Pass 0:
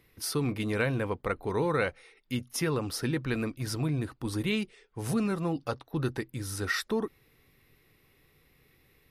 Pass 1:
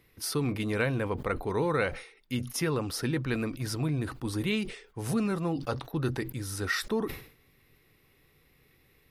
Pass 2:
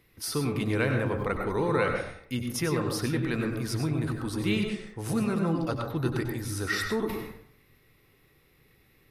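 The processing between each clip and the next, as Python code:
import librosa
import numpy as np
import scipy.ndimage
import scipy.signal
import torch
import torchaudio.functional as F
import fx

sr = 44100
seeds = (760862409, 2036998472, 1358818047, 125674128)

y1 = fx.sustainer(x, sr, db_per_s=110.0)
y2 = fx.rev_plate(y1, sr, seeds[0], rt60_s=0.62, hf_ratio=0.35, predelay_ms=85, drr_db=3.0)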